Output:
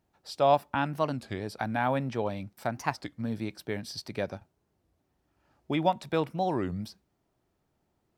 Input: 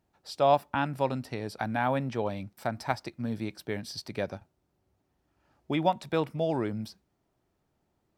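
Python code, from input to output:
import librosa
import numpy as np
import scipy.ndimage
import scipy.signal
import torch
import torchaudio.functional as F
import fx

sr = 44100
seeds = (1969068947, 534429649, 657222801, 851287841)

y = fx.record_warp(x, sr, rpm=33.33, depth_cents=250.0)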